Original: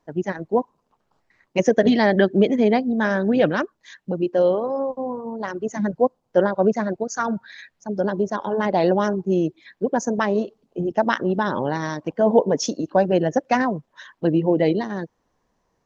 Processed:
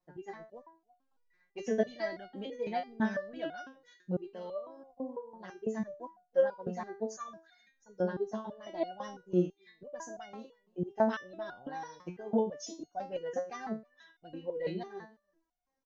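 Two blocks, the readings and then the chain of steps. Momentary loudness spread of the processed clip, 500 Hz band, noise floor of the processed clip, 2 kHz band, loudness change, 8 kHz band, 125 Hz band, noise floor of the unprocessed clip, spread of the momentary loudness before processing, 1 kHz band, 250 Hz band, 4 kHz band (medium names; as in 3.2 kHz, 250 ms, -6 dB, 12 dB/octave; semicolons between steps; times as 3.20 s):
17 LU, -15.0 dB, -78 dBFS, -17.0 dB, -15.0 dB, no reading, -16.0 dB, -72 dBFS, 11 LU, -16.0 dB, -16.5 dB, -17.0 dB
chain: echo from a far wall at 55 m, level -30 dB; resonator arpeggio 6 Hz 180–720 Hz; trim -1.5 dB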